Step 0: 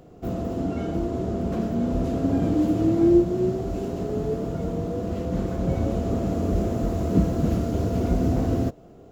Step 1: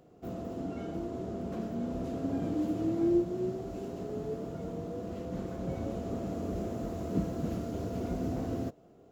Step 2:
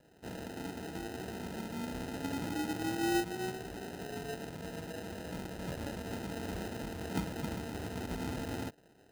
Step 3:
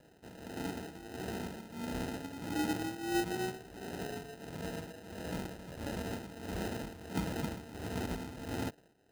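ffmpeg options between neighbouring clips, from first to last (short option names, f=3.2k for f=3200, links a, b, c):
-af "lowshelf=f=78:g=-11.5,volume=-9dB"
-af "acrusher=samples=39:mix=1:aa=0.000001,volume=-4.5dB"
-af "tremolo=f=1.5:d=0.74,volume=3dB"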